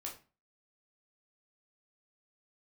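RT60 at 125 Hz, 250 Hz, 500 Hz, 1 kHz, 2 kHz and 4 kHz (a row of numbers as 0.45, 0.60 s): 0.40, 0.40, 0.35, 0.35, 0.30, 0.25 s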